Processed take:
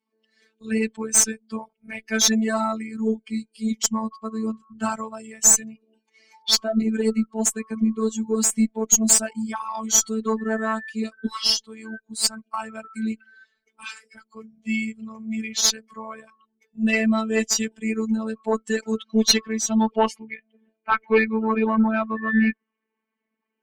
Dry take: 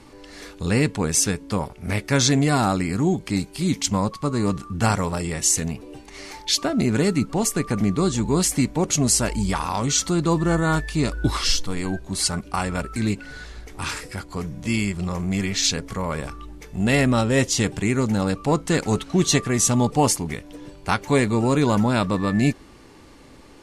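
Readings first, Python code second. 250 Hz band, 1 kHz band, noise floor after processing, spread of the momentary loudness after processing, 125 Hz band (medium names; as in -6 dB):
-1.5 dB, -2.5 dB, -81 dBFS, 17 LU, under -10 dB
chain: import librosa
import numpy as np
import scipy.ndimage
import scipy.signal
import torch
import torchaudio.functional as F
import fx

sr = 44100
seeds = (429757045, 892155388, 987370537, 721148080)

y = fx.bin_expand(x, sr, power=2.0)
y = scipy.signal.sosfilt(scipy.signal.butter(4, 170.0, 'highpass', fs=sr, output='sos'), y)
y = fx.filter_sweep_lowpass(y, sr, from_hz=7600.0, to_hz=2100.0, start_s=18.73, end_s=20.48, q=2.4)
y = fx.robotise(y, sr, hz=221.0)
y = fx.cheby_harmonics(y, sr, harmonics=(4, 5, 8), levels_db=(-22, -13, -25), full_scale_db=-0.5)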